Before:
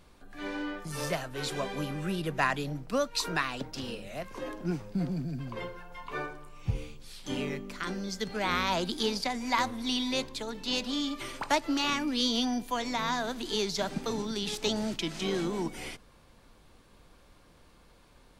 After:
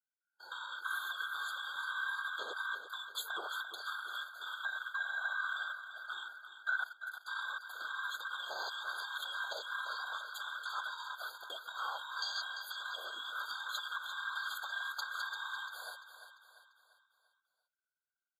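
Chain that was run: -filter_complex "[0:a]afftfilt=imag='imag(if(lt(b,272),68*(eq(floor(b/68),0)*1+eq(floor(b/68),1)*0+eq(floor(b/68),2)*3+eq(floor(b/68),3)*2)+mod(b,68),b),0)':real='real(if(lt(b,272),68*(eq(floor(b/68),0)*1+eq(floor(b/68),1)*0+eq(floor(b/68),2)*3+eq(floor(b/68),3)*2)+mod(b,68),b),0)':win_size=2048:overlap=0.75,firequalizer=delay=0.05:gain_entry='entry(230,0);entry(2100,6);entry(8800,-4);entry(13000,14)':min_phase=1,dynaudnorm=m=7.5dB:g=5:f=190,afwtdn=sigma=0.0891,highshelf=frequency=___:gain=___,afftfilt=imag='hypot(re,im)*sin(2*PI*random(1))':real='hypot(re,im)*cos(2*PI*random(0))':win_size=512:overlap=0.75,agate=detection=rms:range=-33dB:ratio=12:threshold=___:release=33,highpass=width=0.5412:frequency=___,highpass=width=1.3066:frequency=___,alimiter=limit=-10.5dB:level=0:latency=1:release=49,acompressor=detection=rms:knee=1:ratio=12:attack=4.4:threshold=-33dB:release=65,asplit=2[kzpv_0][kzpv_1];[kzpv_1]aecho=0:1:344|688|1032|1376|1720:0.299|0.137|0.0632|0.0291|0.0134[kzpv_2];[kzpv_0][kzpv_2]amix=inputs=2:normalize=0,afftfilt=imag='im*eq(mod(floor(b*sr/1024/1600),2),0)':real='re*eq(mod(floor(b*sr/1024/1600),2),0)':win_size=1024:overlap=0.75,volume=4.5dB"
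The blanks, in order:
3100, 7, -53dB, 480, 480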